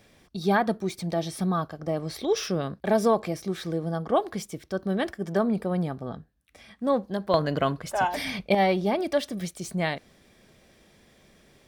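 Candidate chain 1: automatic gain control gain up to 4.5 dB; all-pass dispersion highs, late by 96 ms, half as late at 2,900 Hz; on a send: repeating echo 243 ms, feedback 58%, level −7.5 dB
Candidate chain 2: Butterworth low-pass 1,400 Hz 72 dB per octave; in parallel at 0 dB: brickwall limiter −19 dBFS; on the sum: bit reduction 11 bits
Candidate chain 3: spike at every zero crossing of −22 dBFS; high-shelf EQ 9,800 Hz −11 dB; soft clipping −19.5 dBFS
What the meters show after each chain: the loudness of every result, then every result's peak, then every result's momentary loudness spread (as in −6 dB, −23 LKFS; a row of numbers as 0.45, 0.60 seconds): −22.5, −23.0, −29.5 LKFS; −5.5, −6.0, −19.5 dBFS; 12, 9, 8 LU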